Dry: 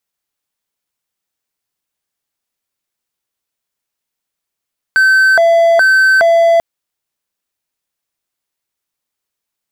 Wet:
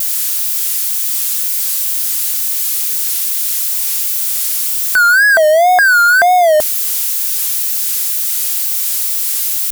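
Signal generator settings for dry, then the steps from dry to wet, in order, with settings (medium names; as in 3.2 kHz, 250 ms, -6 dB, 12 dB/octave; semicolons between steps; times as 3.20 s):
siren hi-lo 671–1540 Hz 1.2 per s triangle -4 dBFS 1.64 s
zero-crossing glitches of -12 dBFS; wow and flutter 150 cents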